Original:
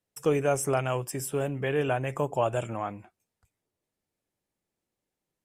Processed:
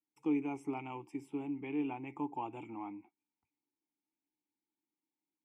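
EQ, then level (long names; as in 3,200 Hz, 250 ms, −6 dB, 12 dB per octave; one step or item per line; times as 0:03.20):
formant filter u
+2.0 dB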